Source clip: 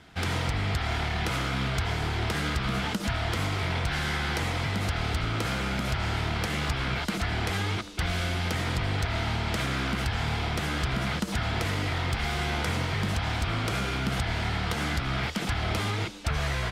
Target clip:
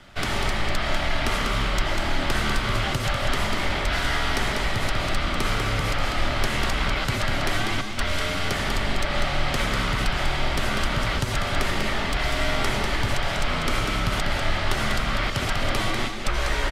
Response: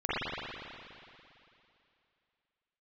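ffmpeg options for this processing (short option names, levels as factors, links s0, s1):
-af "afreqshift=-89,aecho=1:1:195:0.501,volume=1.68"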